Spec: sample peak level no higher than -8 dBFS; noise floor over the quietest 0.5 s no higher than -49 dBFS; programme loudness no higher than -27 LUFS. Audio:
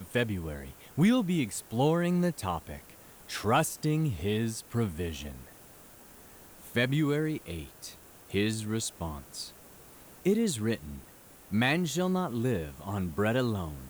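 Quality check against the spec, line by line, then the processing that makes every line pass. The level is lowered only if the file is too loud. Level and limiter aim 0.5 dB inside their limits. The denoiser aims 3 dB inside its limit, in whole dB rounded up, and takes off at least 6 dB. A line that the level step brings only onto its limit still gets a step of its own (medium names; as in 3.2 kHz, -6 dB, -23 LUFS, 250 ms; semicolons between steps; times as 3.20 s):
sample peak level -15.0 dBFS: pass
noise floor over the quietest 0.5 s -53 dBFS: pass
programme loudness -30.5 LUFS: pass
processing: none needed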